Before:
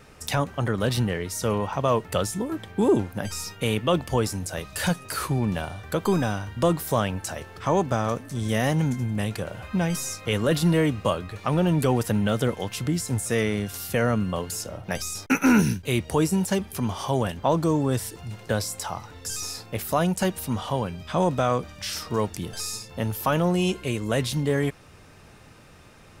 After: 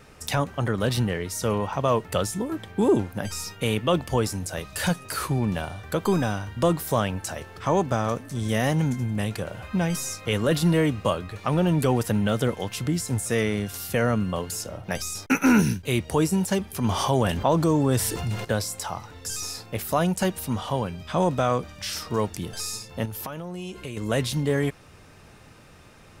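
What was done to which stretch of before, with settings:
0:16.84–0:18.45: envelope flattener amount 50%
0:23.05–0:23.97: downward compressor 10 to 1, threshold −30 dBFS

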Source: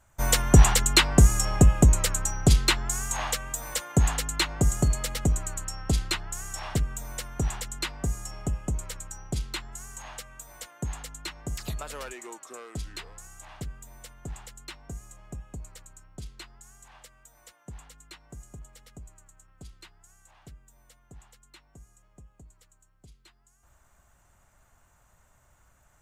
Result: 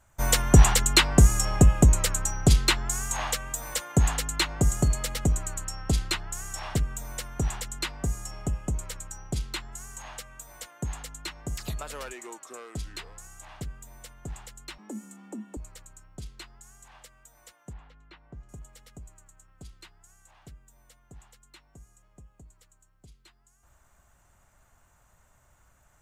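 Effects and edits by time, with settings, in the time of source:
0:14.78–0:15.57: frequency shifter +160 Hz
0:17.73–0:18.49: high-frequency loss of the air 310 metres

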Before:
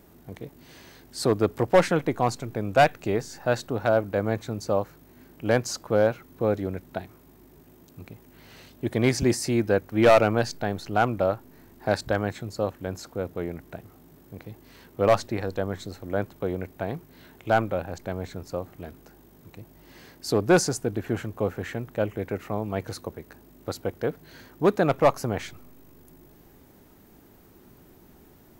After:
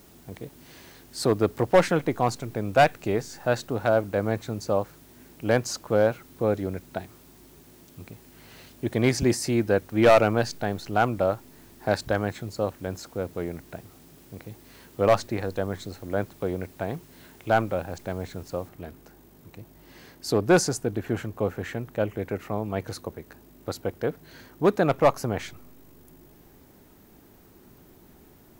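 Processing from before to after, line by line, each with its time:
0:18.69: noise floor change −58 dB −69 dB

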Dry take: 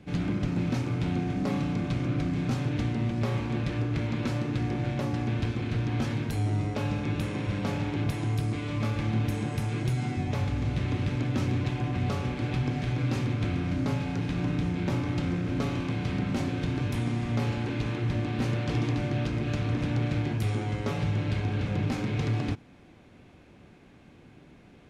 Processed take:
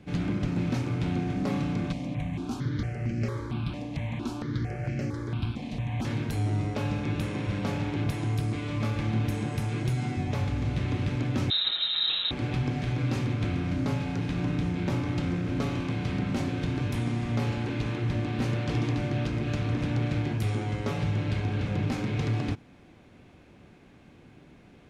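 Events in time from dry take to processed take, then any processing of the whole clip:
0:01.92–0:06.05: step-sequenced phaser 4.4 Hz 380–3,600 Hz
0:11.50–0:12.31: voice inversion scrambler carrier 3,900 Hz

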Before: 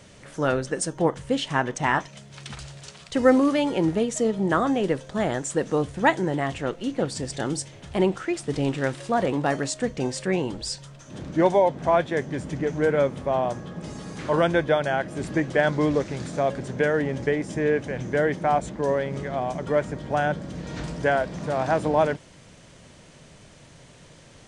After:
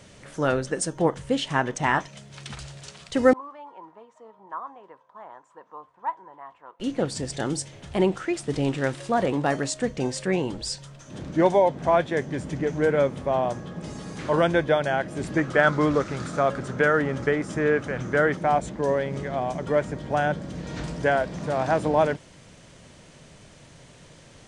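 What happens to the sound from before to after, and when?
0:03.33–0:06.80: resonant band-pass 1,000 Hz, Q 10
0:15.38–0:18.37: parametric band 1,300 Hz +14 dB 0.38 octaves

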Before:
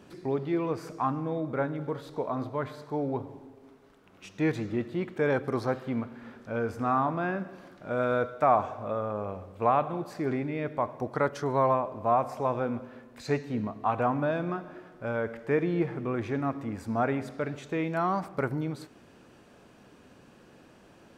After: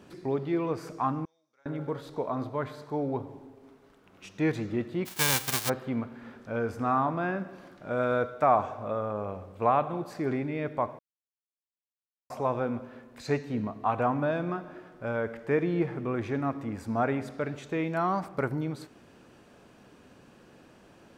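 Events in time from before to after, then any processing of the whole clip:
0:01.25–0:01.66: resonant band-pass 5,800 Hz, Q 9.4
0:05.05–0:05.68: spectral envelope flattened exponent 0.1
0:10.99–0:12.30: silence

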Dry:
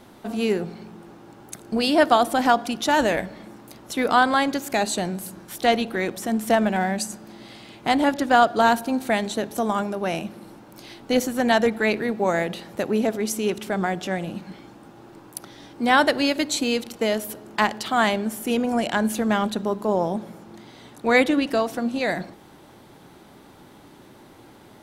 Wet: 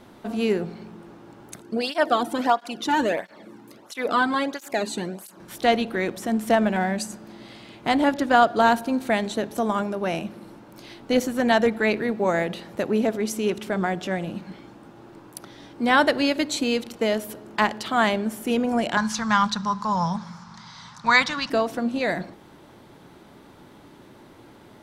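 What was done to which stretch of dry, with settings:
0:01.61–0:05.40: through-zero flanger with one copy inverted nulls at 1.5 Hz, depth 1.9 ms
0:18.97–0:21.50: drawn EQ curve 120 Hz 0 dB, 170 Hz +6 dB, 330 Hz −20 dB, 640 Hz −10 dB, 1,000 Hz +10 dB, 2,800 Hz 0 dB, 5,400 Hz +15 dB, 12,000 Hz −11 dB
whole clip: high-shelf EQ 5,700 Hz −6 dB; notch filter 780 Hz, Q 18

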